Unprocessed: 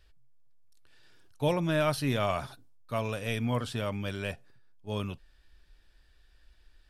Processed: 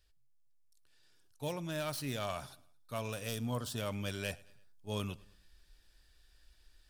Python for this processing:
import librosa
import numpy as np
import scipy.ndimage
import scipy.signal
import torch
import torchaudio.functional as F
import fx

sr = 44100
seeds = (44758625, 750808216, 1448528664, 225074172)

y = fx.tracing_dist(x, sr, depth_ms=0.053)
y = fx.peak_eq(y, sr, hz=2200.0, db=-12.0, octaves=0.51, at=(3.28, 3.78))
y = fx.rider(y, sr, range_db=10, speed_s=0.5)
y = fx.bass_treble(y, sr, bass_db=0, treble_db=10)
y = fx.echo_feedback(y, sr, ms=109, feedback_pct=44, wet_db=-22.5)
y = F.gain(torch.from_numpy(y), -7.0).numpy()